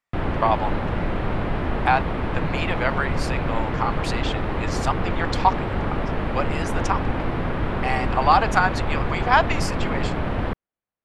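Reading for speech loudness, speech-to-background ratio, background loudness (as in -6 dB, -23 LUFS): -25.0 LUFS, 1.5 dB, -26.5 LUFS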